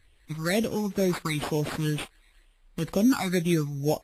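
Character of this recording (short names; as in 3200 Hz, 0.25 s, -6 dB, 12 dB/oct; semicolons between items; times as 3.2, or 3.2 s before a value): a quantiser's noise floor 12-bit, dither triangular; phasing stages 12, 2.1 Hz, lowest notch 500–1500 Hz; aliases and images of a low sample rate 6000 Hz, jitter 0%; Vorbis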